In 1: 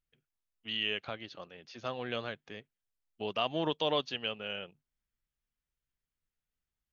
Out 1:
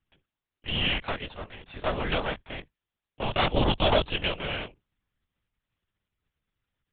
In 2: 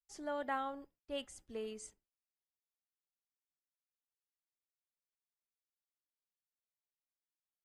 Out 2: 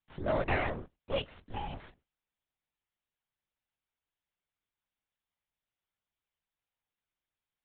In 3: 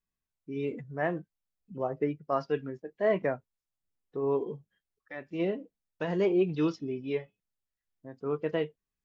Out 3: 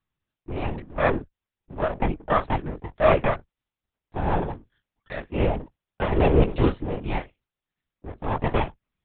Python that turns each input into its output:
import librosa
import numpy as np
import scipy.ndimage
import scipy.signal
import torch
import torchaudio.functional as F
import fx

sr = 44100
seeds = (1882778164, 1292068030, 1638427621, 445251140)

y = fx.lower_of_two(x, sr, delay_ms=3.3)
y = fx.lpc_vocoder(y, sr, seeds[0], excitation='whisper', order=10)
y = y * 10.0 ** (9.0 / 20.0)